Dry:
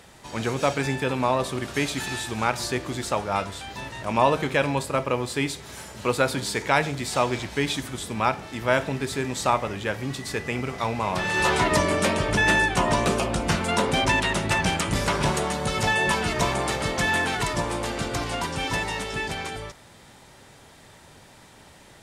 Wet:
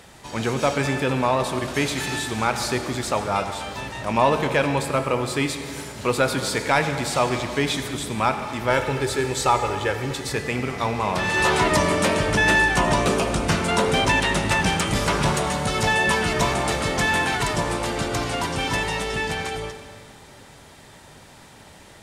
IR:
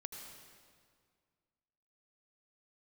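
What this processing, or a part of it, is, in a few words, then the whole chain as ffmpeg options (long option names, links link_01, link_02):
saturated reverb return: -filter_complex "[0:a]asplit=2[link_01][link_02];[1:a]atrim=start_sample=2205[link_03];[link_02][link_03]afir=irnorm=-1:irlink=0,asoftclip=type=tanh:threshold=-20dB,volume=4.5dB[link_04];[link_01][link_04]amix=inputs=2:normalize=0,asettb=1/sr,asplit=3[link_05][link_06][link_07];[link_05]atrim=end=8.704[link_08];[link_06]atrim=start=8.7:end=10.33,asetpts=PTS-STARTPTS,afade=type=in:duration=0.004:curve=qsin,afade=type=out:start_time=1.626:duration=0.004:curve=qsin,aecho=1:1:2.3:0.56,atrim=end_sample=71883[link_09];[link_07]atrim=start=10.326[link_10];[link_08][link_09]acrossfade=duration=0.004:curve1=hsin:curve2=qsin[link_11];[link_11][link_10]acrossfade=duration=0.004:curve1=qsin:curve2=hsin,volume=-3dB"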